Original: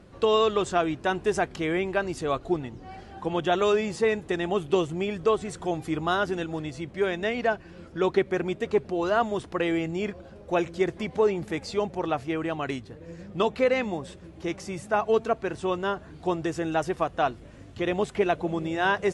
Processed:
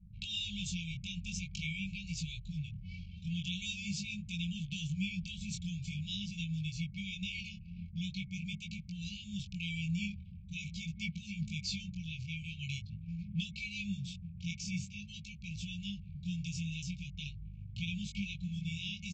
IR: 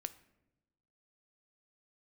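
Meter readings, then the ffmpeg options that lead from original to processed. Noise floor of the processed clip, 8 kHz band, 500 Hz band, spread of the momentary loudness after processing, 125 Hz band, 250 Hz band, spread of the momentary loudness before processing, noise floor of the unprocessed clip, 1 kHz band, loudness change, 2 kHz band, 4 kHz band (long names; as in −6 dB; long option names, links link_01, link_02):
−50 dBFS, −2.0 dB, below −40 dB, 7 LU, −1.5 dB, −10.0 dB, 10 LU, −47 dBFS, below −40 dB, −12.5 dB, −11.5 dB, −2.5 dB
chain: -filter_complex "[0:a]anlmdn=0.0158,acrossover=split=170|3000[link_01][link_02][link_03];[link_02]acompressor=threshold=-32dB:ratio=2[link_04];[link_01][link_04][link_03]amix=inputs=3:normalize=0,aresample=16000,aresample=44100,acompressor=threshold=-34dB:ratio=1.5,flanger=delay=18:depth=5.6:speed=0.45,afftfilt=real='re*(1-between(b*sr/4096,210,2200))':imag='im*(1-between(b*sr/4096,210,2200))':win_size=4096:overlap=0.75,volume=5dB"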